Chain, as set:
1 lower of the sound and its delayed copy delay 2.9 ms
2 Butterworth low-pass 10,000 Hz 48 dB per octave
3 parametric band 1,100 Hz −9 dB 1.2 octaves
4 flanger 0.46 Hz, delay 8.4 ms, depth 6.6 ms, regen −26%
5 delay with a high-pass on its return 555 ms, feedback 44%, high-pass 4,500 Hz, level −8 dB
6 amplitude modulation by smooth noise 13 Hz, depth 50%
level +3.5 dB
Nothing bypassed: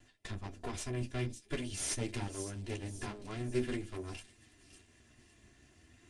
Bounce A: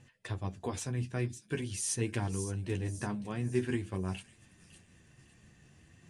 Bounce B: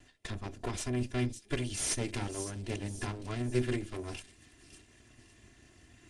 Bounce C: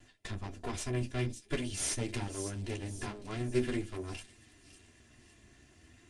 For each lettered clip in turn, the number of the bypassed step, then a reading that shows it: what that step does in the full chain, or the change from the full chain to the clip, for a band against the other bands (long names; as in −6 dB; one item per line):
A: 1, 4 kHz band −4.0 dB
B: 4, change in integrated loudness +3.5 LU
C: 6, change in integrated loudness +2.5 LU